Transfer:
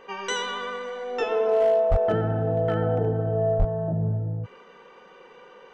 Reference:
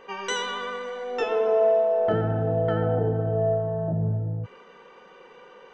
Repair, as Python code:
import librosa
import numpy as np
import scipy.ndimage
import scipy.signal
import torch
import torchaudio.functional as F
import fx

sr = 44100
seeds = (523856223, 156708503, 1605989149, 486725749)

y = fx.fix_declip(x, sr, threshold_db=-14.5)
y = fx.highpass(y, sr, hz=140.0, slope=24, at=(1.9, 2.02), fade=0.02)
y = fx.highpass(y, sr, hz=140.0, slope=24, at=(3.58, 3.7), fade=0.02)